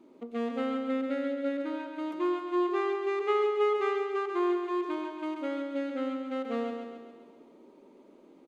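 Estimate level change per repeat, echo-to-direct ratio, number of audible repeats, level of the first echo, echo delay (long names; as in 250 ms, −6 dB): −5.0 dB, −4.0 dB, 6, −5.5 dB, 136 ms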